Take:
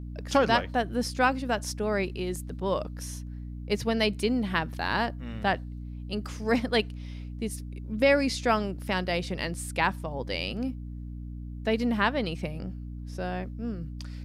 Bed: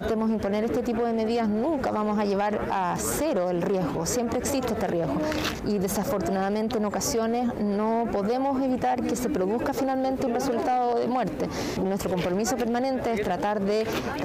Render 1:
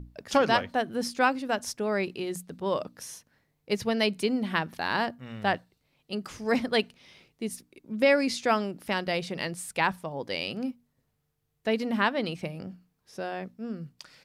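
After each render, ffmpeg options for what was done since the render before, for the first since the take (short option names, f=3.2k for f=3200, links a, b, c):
-af "bandreject=f=60:t=h:w=6,bandreject=f=120:t=h:w=6,bandreject=f=180:t=h:w=6,bandreject=f=240:t=h:w=6,bandreject=f=300:t=h:w=6"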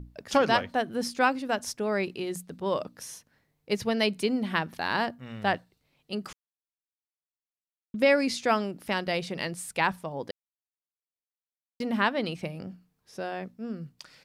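-filter_complex "[0:a]asplit=5[a][b][c][d][e];[a]atrim=end=6.33,asetpts=PTS-STARTPTS,afade=t=out:st=6.326:d=0.004:c=hsin[f];[b]atrim=start=6.33:end=7.94,asetpts=PTS-STARTPTS,volume=0[g];[c]atrim=start=7.94:end=10.31,asetpts=PTS-STARTPTS,afade=t=in:d=0.004:c=hsin,afade=t=out:st=2.366:d=0.004:c=hsin[h];[d]atrim=start=10.31:end=11.8,asetpts=PTS-STARTPTS,volume=0[i];[e]atrim=start=11.8,asetpts=PTS-STARTPTS,afade=t=in:d=0.004:c=hsin[j];[f][g][h][i][j]concat=n=5:v=0:a=1"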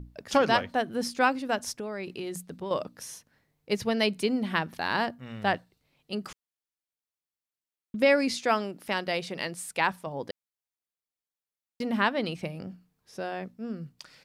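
-filter_complex "[0:a]asettb=1/sr,asplit=3[a][b][c];[a]atrim=end=1.794[d];[b]atrim=start=1.79:end=2.71,asetpts=PTS-STARTPTS,afade=t=in:d=0.004:c=qsin,afade=t=out:st=0.916:d=0.004:c=qsin,acompressor=threshold=-31dB:ratio=6:attack=3.2:release=140:knee=1:detection=peak[e];[c]atrim=start=2.706[f];[d][e]acrossfade=d=0.004:c1=hsin:c2=qsin[g];[g][f]acrossfade=d=0.004:c1=qsin:c2=hsin,asettb=1/sr,asplit=3[h][i][j];[h]atrim=end=8.394[k];[i]atrim=start=8.39:end=10.07,asetpts=PTS-STARTPTS,afade=t=in:d=0.004:c=qsin,afade=t=out:st=1.676:d=0.004:c=qsin,lowshelf=f=130:g=-11.5[l];[j]atrim=start=10.066[m];[k][l]acrossfade=d=0.004:c1=hsin:c2=qsin[n];[n][m]acrossfade=d=0.004:c1=qsin:c2=hsin"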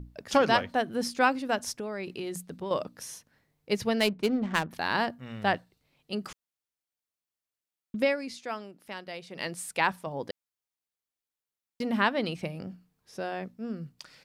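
-filter_complex "[0:a]asettb=1/sr,asplit=3[a][b][c];[a]atrim=end=4.004[d];[b]atrim=start=4:end=4.71,asetpts=PTS-STARTPTS,afade=t=in:d=0.004:c=qsin,afade=t=out:st=0.706:d=0.004:c=qsin,adynamicsmooth=sensitivity=6:basefreq=730[e];[c]atrim=start=4.706[f];[d][e]acrossfade=d=0.004:c1=hsin:c2=qsin[g];[g][f]acrossfade=d=0.004:c1=qsin:c2=hsin,asplit=3[h][i][j];[h]atrim=end=8.16,asetpts=PTS-STARTPTS,afade=t=out:st=7.97:d=0.19:silence=0.298538[k];[i]atrim=start=8.16:end=9.29,asetpts=PTS-STARTPTS,volume=-10.5dB[l];[j]atrim=start=9.29,asetpts=PTS-STARTPTS,afade=t=in:d=0.19:silence=0.298538[m];[k][l][m]concat=n=3:v=0:a=1"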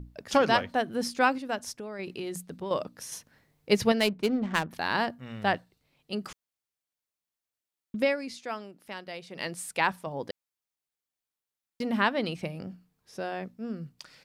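-filter_complex "[0:a]asplit=5[a][b][c][d][e];[a]atrim=end=1.382[f];[b]atrim=start=1.378:end=1.992,asetpts=PTS-STARTPTS,volume=-3.5dB[g];[c]atrim=start=1.988:end=3.122[h];[d]atrim=start=3.118:end=3.922,asetpts=PTS-STARTPTS,volume=5dB[i];[e]atrim=start=3.918[j];[f][g]acrossfade=d=0.004:c1=hsin:c2=hsin[k];[k][h]acrossfade=d=0.004:c1=hsin:c2=hsin[l];[l][i]acrossfade=d=0.004:c1=hsin:c2=hsin[m];[m][j]acrossfade=d=0.004:c1=hsin:c2=hsin"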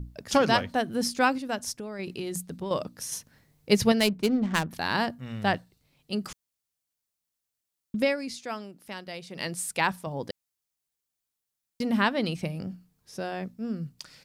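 -af "bass=f=250:g=6,treble=f=4k:g=6"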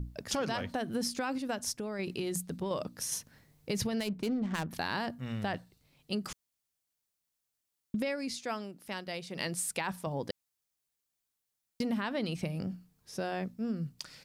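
-af "alimiter=limit=-19dB:level=0:latency=1:release=28,acompressor=threshold=-30dB:ratio=4"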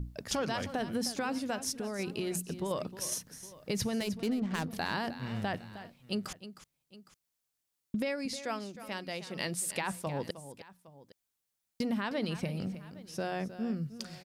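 -af "aecho=1:1:311|812:0.224|0.1"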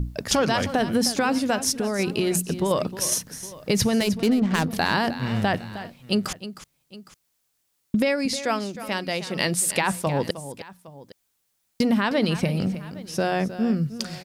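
-af "volume=11.5dB"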